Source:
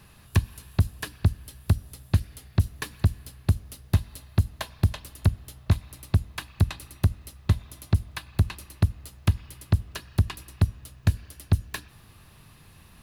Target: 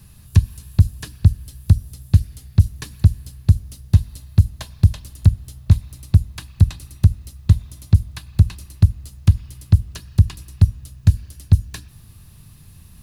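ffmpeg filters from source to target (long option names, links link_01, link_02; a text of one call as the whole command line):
ffmpeg -i in.wav -filter_complex "[0:a]bass=frequency=250:gain=14,treble=frequency=4000:gain=12,acrossover=split=8500[link_01][link_02];[link_02]acompressor=threshold=-40dB:ratio=4:attack=1:release=60[link_03];[link_01][link_03]amix=inputs=2:normalize=0,volume=-4.5dB" out.wav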